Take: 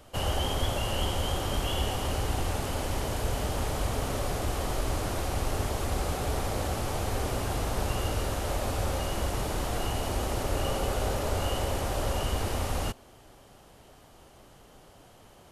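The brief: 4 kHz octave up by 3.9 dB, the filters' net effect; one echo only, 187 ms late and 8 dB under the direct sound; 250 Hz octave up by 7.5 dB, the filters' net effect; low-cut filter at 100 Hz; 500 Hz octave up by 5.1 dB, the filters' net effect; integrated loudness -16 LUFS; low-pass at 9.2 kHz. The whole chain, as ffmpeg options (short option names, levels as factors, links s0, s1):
-af "highpass=100,lowpass=9200,equalizer=f=250:t=o:g=8.5,equalizer=f=500:t=o:g=4,equalizer=f=4000:t=o:g=5.5,aecho=1:1:187:0.398,volume=3.98"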